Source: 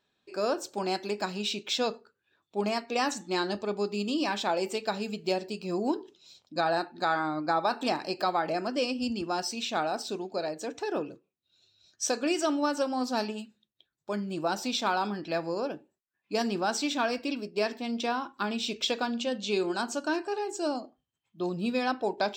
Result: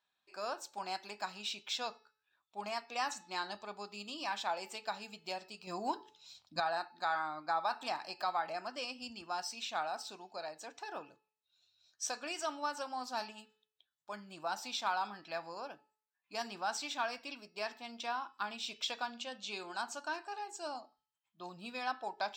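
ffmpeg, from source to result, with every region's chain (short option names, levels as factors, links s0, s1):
-filter_complex "[0:a]asettb=1/sr,asplit=3[s0][s1][s2];[s0]atrim=end=5.674[s3];[s1]atrim=start=5.67:end=6.6,asetpts=PTS-STARTPTS,afade=t=in:d=0.004:c=qsin,afade=t=out:st=0.926:d=0.004:c=qsin,asubboost=boost=9.5:cutoff=210,acontrast=53[s4];[s2]atrim=start=6.596[s5];[s3][s4]acrossfade=d=0.004:c1=hsin:c2=qsin[s6];[s6][s5]acrossfade=d=0.004:c1=qsin:c2=hsin,lowshelf=f=590:t=q:w=1.5:g=-10.5,bandreject=f=432.1:t=h:w=4,bandreject=f=864.2:t=h:w=4,bandreject=f=1296.3:t=h:w=4,bandreject=f=1728.4:t=h:w=4,bandreject=f=2160.5:t=h:w=4,bandreject=f=2592.6:t=h:w=4,bandreject=f=3024.7:t=h:w=4,bandreject=f=3456.8:t=h:w=4,bandreject=f=3888.9:t=h:w=4,bandreject=f=4321:t=h:w=4,bandreject=f=4753.1:t=h:w=4,bandreject=f=5185.2:t=h:w=4,bandreject=f=5617.3:t=h:w=4,volume=0.422"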